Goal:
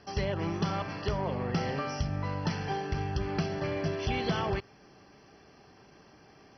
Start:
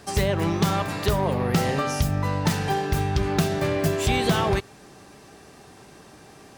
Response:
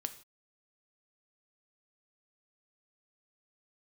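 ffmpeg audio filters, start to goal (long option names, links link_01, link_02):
-af "volume=-8.5dB" -ar 32000 -c:a mp2 -b:a 32k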